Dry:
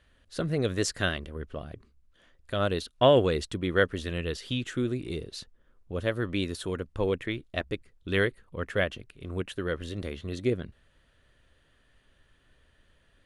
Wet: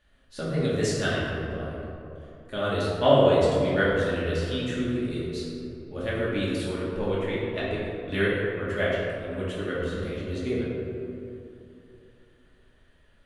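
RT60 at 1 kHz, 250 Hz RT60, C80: 2.7 s, 3.1 s, 0.0 dB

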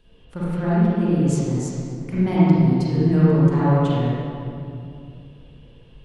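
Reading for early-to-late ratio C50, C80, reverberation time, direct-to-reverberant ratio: -7.0 dB, -3.5 dB, 2.5 s, -9.5 dB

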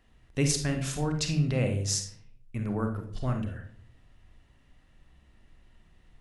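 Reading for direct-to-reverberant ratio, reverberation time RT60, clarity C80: 4.5 dB, 0.55 s, 12.0 dB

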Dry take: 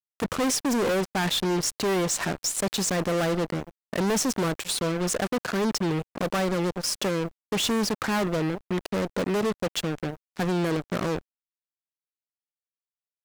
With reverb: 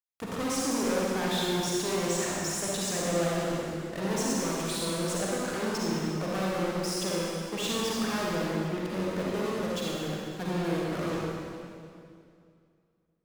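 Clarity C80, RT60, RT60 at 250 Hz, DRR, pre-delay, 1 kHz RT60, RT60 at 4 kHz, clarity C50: -1.5 dB, 2.4 s, 2.7 s, -5.5 dB, 40 ms, 2.3 s, 2.2 s, -4.5 dB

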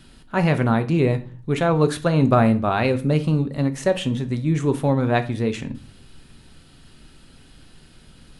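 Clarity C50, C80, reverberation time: 16.0 dB, 21.0 dB, 0.40 s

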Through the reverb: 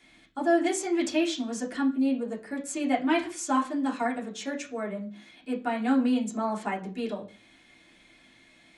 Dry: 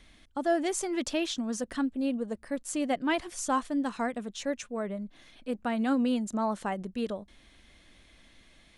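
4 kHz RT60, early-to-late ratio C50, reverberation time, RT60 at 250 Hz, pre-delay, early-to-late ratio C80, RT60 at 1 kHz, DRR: 0.40 s, 12.5 dB, 0.40 s, 0.45 s, 3 ms, 17.5 dB, 0.35 s, -6.0 dB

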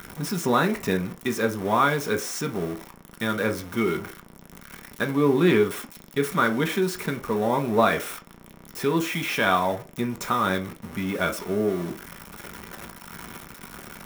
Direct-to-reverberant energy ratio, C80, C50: 3.5 dB, 22.0 dB, 15.5 dB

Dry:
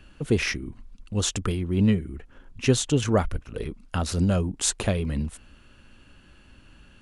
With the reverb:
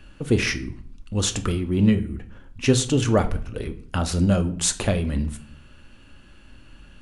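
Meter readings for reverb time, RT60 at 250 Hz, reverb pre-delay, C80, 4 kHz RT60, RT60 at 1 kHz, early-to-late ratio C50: 0.55 s, 0.70 s, 3 ms, 19.0 dB, 0.40 s, 0.50 s, 15.0 dB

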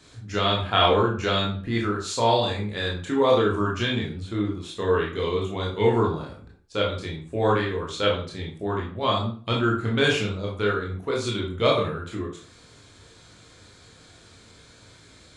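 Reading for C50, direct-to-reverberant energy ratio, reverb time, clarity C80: 5.5 dB, -3.0 dB, 0.40 s, 11.0 dB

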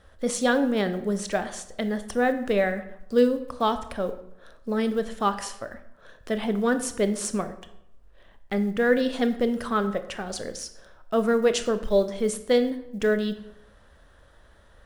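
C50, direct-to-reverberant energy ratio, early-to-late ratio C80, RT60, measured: 12.5 dB, 9.5 dB, 15.0 dB, 0.80 s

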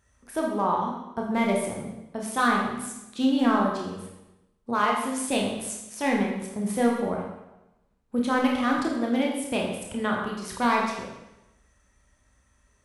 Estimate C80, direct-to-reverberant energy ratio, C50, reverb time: 5.0 dB, -1.5 dB, 2.5 dB, 0.95 s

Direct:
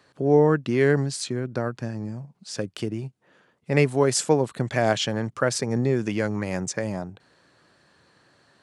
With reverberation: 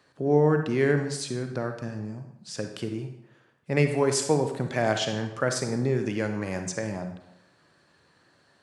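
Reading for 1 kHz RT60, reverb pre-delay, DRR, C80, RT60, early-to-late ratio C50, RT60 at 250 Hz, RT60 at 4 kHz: 0.85 s, 37 ms, 6.0 dB, 10.0 dB, 0.85 s, 7.0 dB, 0.80 s, 0.70 s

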